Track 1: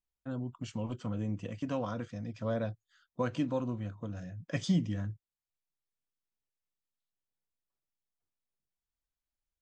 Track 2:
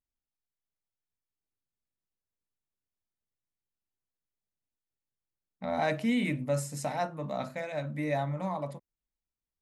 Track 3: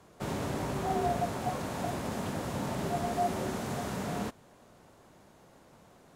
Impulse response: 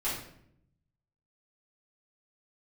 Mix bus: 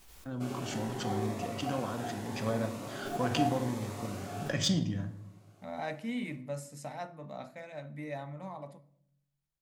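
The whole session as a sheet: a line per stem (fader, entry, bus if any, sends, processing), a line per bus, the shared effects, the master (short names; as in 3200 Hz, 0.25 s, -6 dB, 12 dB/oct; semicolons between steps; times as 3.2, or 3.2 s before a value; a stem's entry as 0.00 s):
+2.0 dB, 0.00 s, send -11.5 dB, de-esser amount 90%; resonator 75 Hz, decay 0.33 s, harmonics all, mix 40%; backwards sustainer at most 70 dB/s
-7.5 dB, 0.00 s, send -19 dB, dry
-6.5 dB, 0.20 s, send -4.5 dB, HPF 260 Hz 12 dB/oct; cascading phaser rising 0.79 Hz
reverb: on, RT60 0.70 s, pre-delay 3 ms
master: added harmonics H 7 -30 dB, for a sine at -14.5 dBFS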